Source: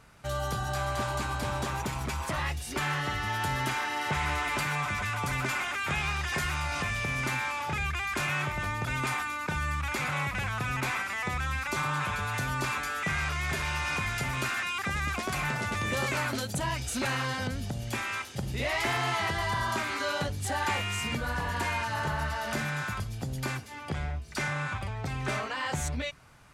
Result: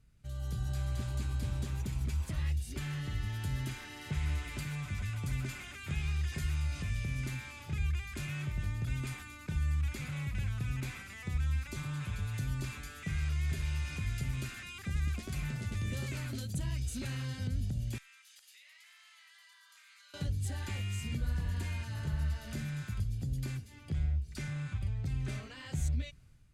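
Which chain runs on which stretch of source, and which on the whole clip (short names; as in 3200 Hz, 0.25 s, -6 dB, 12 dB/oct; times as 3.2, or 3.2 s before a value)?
17.98–20.14 HPF 1200 Hz 24 dB/oct + compressor 10:1, threshold -42 dBFS
whole clip: AGC gain up to 7 dB; passive tone stack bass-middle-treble 10-0-1; notch 5600 Hz, Q 20; gain +4.5 dB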